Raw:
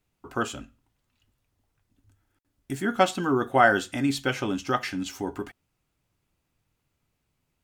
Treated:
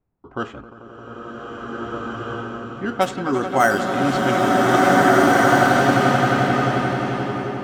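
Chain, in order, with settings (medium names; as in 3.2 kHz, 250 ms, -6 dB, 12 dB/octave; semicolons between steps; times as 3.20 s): on a send: echo with a slow build-up 88 ms, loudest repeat 5, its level -13 dB; 0.61–2.77 s: on the sum: level held to a coarse grid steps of 21 dB; in parallel at -4.5 dB: decimation with a swept rate 8×, swing 60% 0.78 Hz; on the sum: level-controlled noise filter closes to 1.1 kHz, open at -11 dBFS; swelling reverb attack 1880 ms, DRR -6 dB; trim -2.5 dB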